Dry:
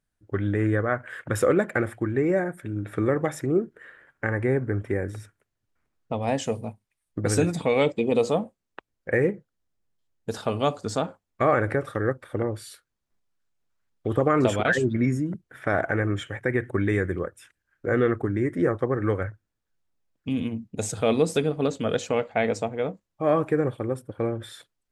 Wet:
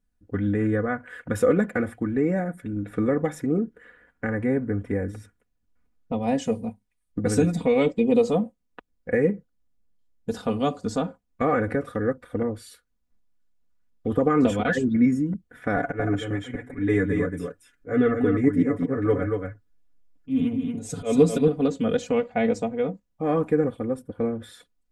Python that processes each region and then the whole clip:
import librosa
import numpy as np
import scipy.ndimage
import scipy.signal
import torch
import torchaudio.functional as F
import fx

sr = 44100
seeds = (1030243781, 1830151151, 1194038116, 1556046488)

y = fx.chain(x, sr, fx.auto_swell(attack_ms=155.0),
    fx.comb(ms=7.0, depth=0.74),
    fx.echo_single(ms=232, db=-5.0), at=(15.76, 21.48))
y = fx.low_shelf(y, sr, hz=320.0, db=11.0)
y = y + 0.74 * np.pad(y, (int(4.1 * sr / 1000.0), 0))[:len(y)]
y = y * librosa.db_to_amplitude(-5.5)